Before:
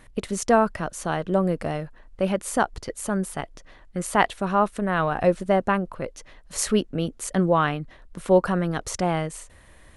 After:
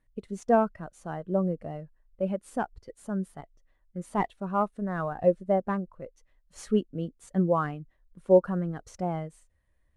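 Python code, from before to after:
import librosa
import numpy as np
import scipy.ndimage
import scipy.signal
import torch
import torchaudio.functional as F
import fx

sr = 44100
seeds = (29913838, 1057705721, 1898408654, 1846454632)

y = fx.cvsd(x, sr, bps=64000)
y = fx.spectral_expand(y, sr, expansion=1.5)
y = y * 10.0 ** (-3.0 / 20.0)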